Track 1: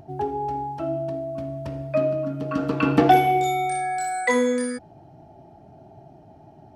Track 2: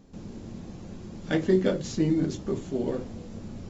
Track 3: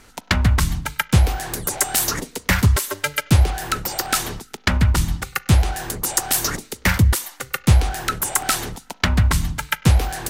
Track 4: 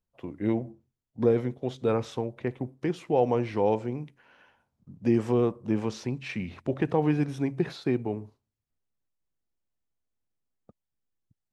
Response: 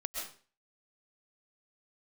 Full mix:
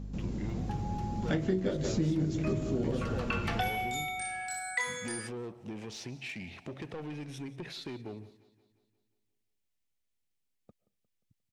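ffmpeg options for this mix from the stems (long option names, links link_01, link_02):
-filter_complex "[0:a]highpass=1400,adelay=500,volume=-3.5dB[link_01];[1:a]equalizer=frequency=120:width_type=o:width=1.2:gain=9,aeval=exprs='val(0)+0.0112*(sin(2*PI*50*n/s)+sin(2*PI*2*50*n/s)/2+sin(2*PI*3*50*n/s)/3+sin(2*PI*4*50*n/s)/4+sin(2*PI*5*50*n/s)/5)':channel_layout=same,volume=-0.5dB,asplit=2[link_02][link_03];[link_03]volume=-10.5dB[link_04];[3:a]highshelf=frequency=1700:width_type=q:width=1.5:gain=6.5,asoftclip=type=tanh:threshold=-25.5dB,acompressor=threshold=-36dB:ratio=4,volume=-4dB,asplit=3[link_05][link_06][link_07];[link_06]volume=-21.5dB[link_08];[link_07]volume=-19.5dB[link_09];[4:a]atrim=start_sample=2205[link_10];[link_08][link_10]afir=irnorm=-1:irlink=0[link_11];[link_04][link_09]amix=inputs=2:normalize=0,aecho=0:1:177|354|531|708|885|1062|1239|1416:1|0.55|0.303|0.166|0.0915|0.0503|0.0277|0.0152[link_12];[link_01][link_02][link_05][link_11][link_12]amix=inputs=5:normalize=0,acompressor=threshold=-27dB:ratio=5"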